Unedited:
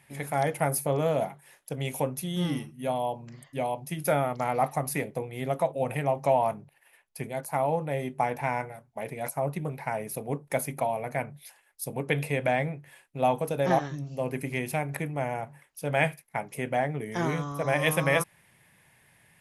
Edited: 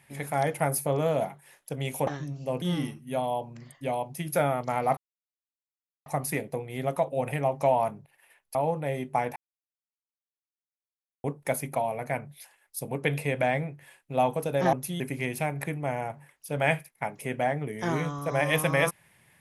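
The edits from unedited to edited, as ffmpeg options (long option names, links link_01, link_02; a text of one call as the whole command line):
ffmpeg -i in.wav -filter_complex "[0:a]asplit=9[link_01][link_02][link_03][link_04][link_05][link_06][link_07][link_08][link_09];[link_01]atrim=end=2.072[link_10];[link_02]atrim=start=13.778:end=14.332[link_11];[link_03]atrim=start=2.338:end=4.69,asetpts=PTS-STARTPTS,afade=type=out:start_time=2.348:duration=0.004:curve=hsin,apad=pad_dur=1.09[link_12];[link_04]atrim=start=4.69:end=7.182,asetpts=PTS-STARTPTS,afade=type=in:duration=0.004:curve=hsin[link_13];[link_05]atrim=start=7.598:end=8.41,asetpts=PTS-STARTPTS,afade=type=out:start_time=0.808:duration=0.004:curve=hsin[link_14];[link_06]atrim=start=8.41:end=10.29,asetpts=PTS-STARTPTS,volume=0[link_15];[link_07]atrim=start=10.29:end=13.782,asetpts=PTS-STARTPTS,afade=type=in:duration=0.004:curve=hsin[link_16];[link_08]atrim=start=2.068:end=2.342[link_17];[link_09]atrim=start=14.328[link_18];[link_10][link_11]acrossfade=duration=0.004:curve1=hsin:curve2=hsin[link_19];[link_12][link_13]concat=n=2:v=0:a=1[link_20];[link_19][link_20]acrossfade=duration=0.004:curve1=hsin:curve2=hsin[link_21];[link_14][link_15][link_16]concat=n=3:v=0:a=1[link_22];[link_21][link_22]acrossfade=duration=0.004:curve1=hsin:curve2=hsin[link_23];[link_23][link_17]acrossfade=duration=0.004:curve1=hsin:curve2=hsin[link_24];[link_24][link_18]acrossfade=duration=0.004:curve1=hsin:curve2=hsin" out.wav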